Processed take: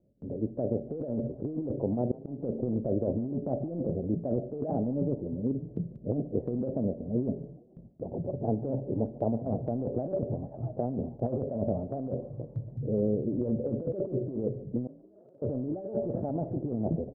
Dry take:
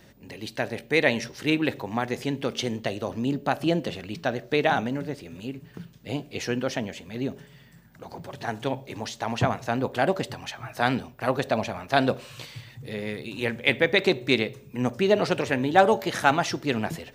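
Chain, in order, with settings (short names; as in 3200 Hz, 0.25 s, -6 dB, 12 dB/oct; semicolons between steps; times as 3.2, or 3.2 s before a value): rattling part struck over -28 dBFS, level -12 dBFS; elliptic low-pass 600 Hz, stop band 80 dB; gate with hold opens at -44 dBFS; 1.95–2.43 auto swell 0.439 s; negative-ratio compressor -33 dBFS, ratio -1; 14.87–15.42 differentiator; frequency-shifting echo 0.143 s, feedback 49%, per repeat +37 Hz, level -21 dB; gain +2.5 dB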